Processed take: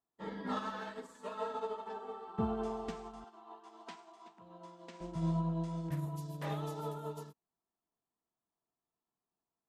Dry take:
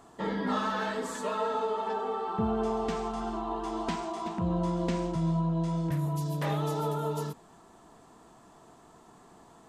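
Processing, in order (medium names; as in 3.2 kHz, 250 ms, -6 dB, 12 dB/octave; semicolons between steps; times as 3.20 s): 3.24–5.01 s: frequency weighting A; upward expansion 2.5:1, over -50 dBFS; trim -3.5 dB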